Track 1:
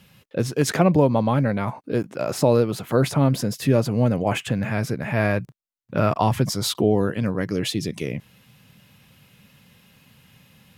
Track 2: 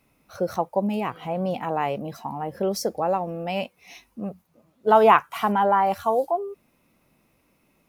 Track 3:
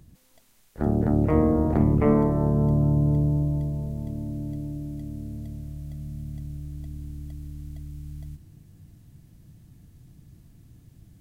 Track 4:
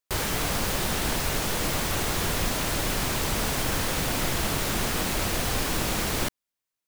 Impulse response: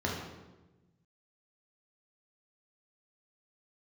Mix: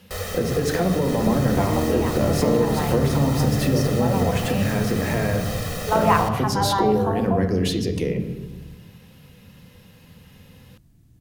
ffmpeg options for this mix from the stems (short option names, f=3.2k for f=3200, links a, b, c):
-filter_complex "[0:a]acompressor=threshold=-22dB:ratio=6,equalizer=f=1.7k:w=1.5:g=-2.5,volume=-1dB,asplit=2[a][b];[b]volume=-8dB[c];[1:a]highpass=720,adelay=1000,volume=-5.5dB,asplit=2[d][e];[e]volume=-9.5dB[f];[2:a]adelay=400,volume=-3.5dB[g];[3:a]aecho=1:1:1.6:0.96,volume=-9dB,asplit=2[h][i];[i]volume=-11.5dB[j];[a][h]amix=inputs=2:normalize=0,equalizer=f=490:t=o:w=0.25:g=13,acompressor=threshold=-23dB:ratio=6,volume=0dB[k];[4:a]atrim=start_sample=2205[l];[c][f][j]amix=inputs=3:normalize=0[m];[m][l]afir=irnorm=-1:irlink=0[n];[d][g][k][n]amix=inputs=4:normalize=0"